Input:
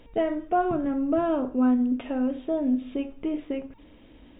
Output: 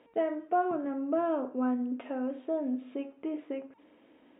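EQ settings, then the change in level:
band-pass filter 310–2,300 Hz
−3.5 dB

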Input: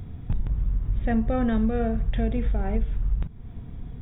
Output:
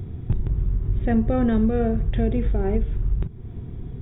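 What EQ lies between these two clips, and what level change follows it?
parametric band 110 Hz +6.5 dB 1.5 octaves
parametric band 370 Hz +13 dB 0.43 octaves
0.0 dB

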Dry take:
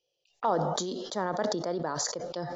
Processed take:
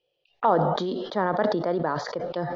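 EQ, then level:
low-pass filter 3,500 Hz 12 dB per octave
high-frequency loss of the air 280 metres
high-shelf EQ 2,200 Hz +7.5 dB
+6.5 dB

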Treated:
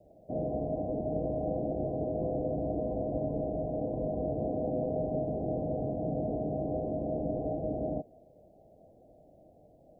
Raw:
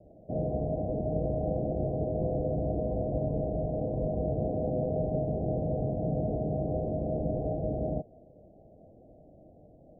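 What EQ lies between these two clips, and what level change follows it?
tilt shelving filter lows −7 dB, about 770 Hz
dynamic equaliser 280 Hz, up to +7 dB, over −53 dBFS, Q 2.1
0.0 dB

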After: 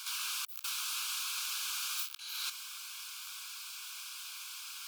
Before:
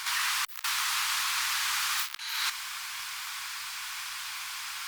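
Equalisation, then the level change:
high-pass filter 1,500 Hz 12 dB per octave
Butterworth band-reject 1,900 Hz, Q 2.6
high-shelf EQ 9,400 Hz +5.5 dB
−7.5 dB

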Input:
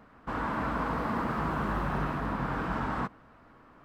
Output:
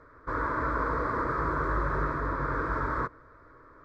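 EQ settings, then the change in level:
high-frequency loss of the air 110 metres
phaser with its sweep stopped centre 770 Hz, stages 6
+5.5 dB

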